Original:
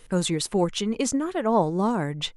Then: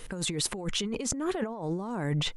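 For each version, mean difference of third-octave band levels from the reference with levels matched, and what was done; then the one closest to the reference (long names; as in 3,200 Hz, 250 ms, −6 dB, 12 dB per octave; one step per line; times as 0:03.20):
6.0 dB: compressor whose output falls as the input rises −32 dBFS, ratio −1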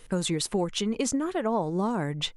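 1.5 dB: downward compressor, threshold −23 dBFS, peak gain reduction 7.5 dB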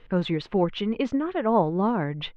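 3.5 dB: low-pass filter 3,200 Hz 24 dB per octave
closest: second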